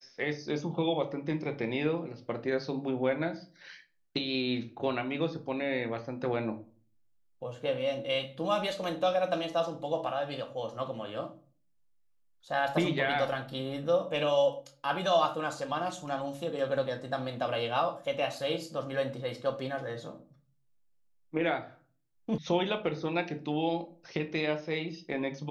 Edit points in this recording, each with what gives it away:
22.38 sound cut off

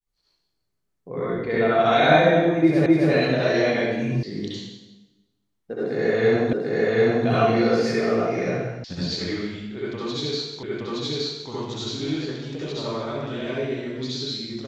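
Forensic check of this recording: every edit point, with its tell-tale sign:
2.86 repeat of the last 0.26 s
4.23 sound cut off
6.53 repeat of the last 0.74 s
8.84 sound cut off
10.63 repeat of the last 0.87 s

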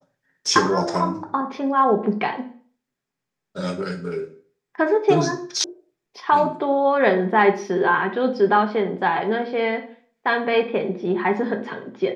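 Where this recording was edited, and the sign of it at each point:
5.64 sound cut off

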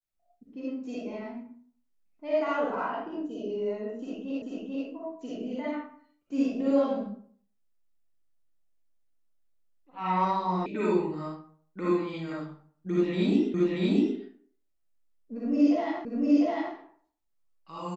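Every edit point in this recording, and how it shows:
4.42 repeat of the last 0.44 s
10.66 sound cut off
13.54 repeat of the last 0.63 s
16.05 repeat of the last 0.7 s

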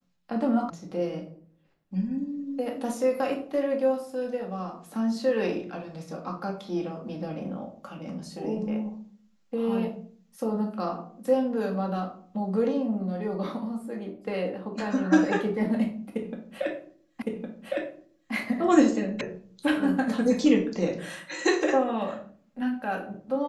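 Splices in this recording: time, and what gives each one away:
0.7 sound cut off
17.22 repeat of the last 1.11 s
19.21 sound cut off

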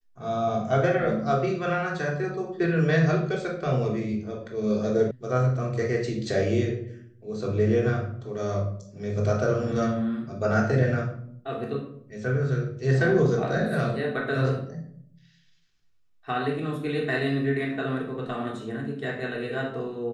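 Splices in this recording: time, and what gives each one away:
5.11 sound cut off

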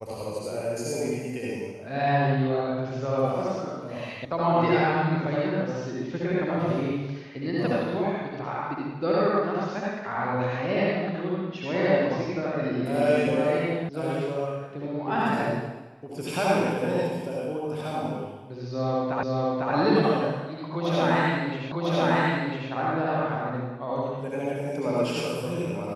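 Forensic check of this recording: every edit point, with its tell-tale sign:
4.25 sound cut off
13.89 sound cut off
19.23 repeat of the last 0.5 s
21.72 repeat of the last 1 s

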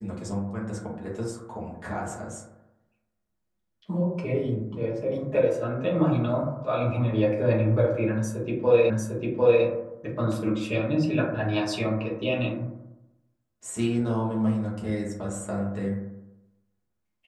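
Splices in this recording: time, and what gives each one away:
8.9 repeat of the last 0.75 s

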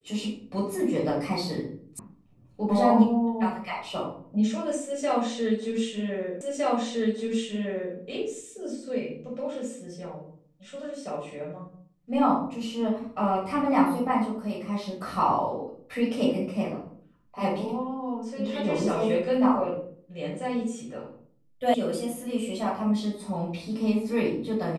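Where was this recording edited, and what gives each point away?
1.99 sound cut off
6.41 repeat of the last 1.56 s
21.74 sound cut off

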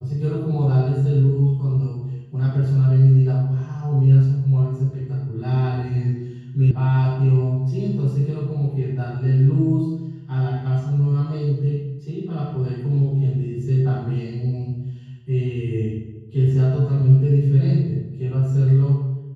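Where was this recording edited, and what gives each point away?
6.71 sound cut off

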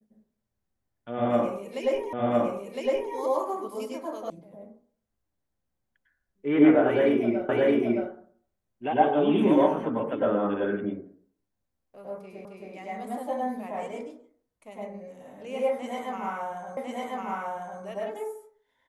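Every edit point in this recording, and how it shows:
2.13 repeat of the last 1.01 s
4.3 sound cut off
7.49 repeat of the last 0.62 s
12.45 repeat of the last 0.27 s
16.77 repeat of the last 1.05 s

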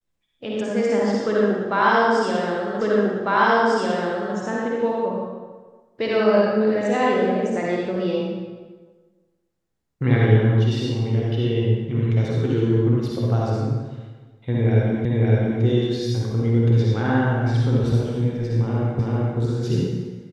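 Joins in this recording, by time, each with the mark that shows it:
2.81 repeat of the last 1.55 s
15.05 repeat of the last 0.56 s
18.99 repeat of the last 0.39 s

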